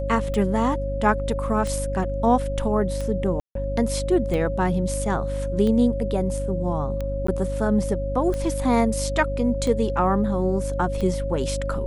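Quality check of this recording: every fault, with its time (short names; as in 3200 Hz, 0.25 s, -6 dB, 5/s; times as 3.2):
hum 50 Hz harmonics 6 -28 dBFS
tick 45 rpm
tone 550 Hz -28 dBFS
3.4–3.55 gap 0.153 s
7.27–7.28 gap 14 ms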